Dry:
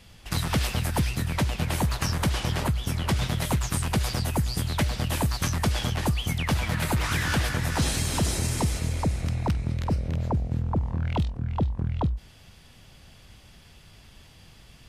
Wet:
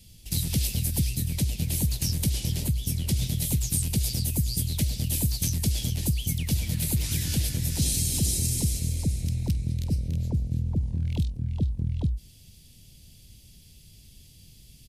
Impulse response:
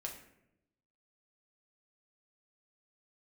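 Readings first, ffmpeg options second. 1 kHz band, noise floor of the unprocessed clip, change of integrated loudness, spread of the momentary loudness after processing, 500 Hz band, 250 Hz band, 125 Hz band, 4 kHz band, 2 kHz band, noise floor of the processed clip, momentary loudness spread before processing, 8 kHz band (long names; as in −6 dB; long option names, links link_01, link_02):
−21.0 dB, −52 dBFS, 0.0 dB, 4 LU, −10.0 dB, −2.0 dB, 0.0 dB, −1.5 dB, −12.5 dB, −52 dBFS, 3 LU, +4.5 dB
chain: -af "firequalizer=gain_entry='entry(140,0);entry(780,-19);entry(1200,-27);entry(2300,-9);entry(4100,0);entry(12000,9)':delay=0.05:min_phase=1"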